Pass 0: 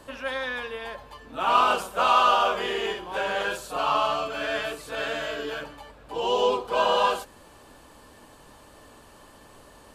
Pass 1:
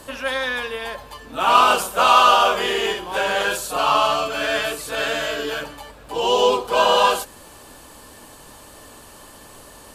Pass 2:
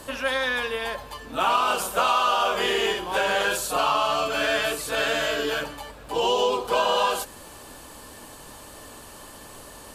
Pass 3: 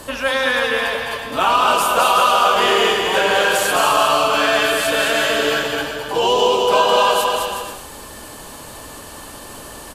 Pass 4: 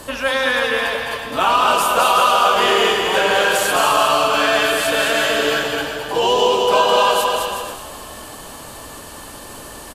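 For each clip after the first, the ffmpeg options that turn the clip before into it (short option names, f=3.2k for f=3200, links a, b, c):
-af "aemphasis=mode=production:type=cd,volume=6dB"
-af "acompressor=threshold=-19dB:ratio=5"
-af "aecho=1:1:210|367.5|485.6|574.2|640.7:0.631|0.398|0.251|0.158|0.1,volume=6dB"
-filter_complex "[0:a]asplit=6[a][b][c][d][e][f];[b]adelay=383,afreqshift=36,volume=-21dB[g];[c]adelay=766,afreqshift=72,volume=-25.2dB[h];[d]adelay=1149,afreqshift=108,volume=-29.3dB[i];[e]adelay=1532,afreqshift=144,volume=-33.5dB[j];[f]adelay=1915,afreqshift=180,volume=-37.6dB[k];[a][g][h][i][j][k]amix=inputs=6:normalize=0"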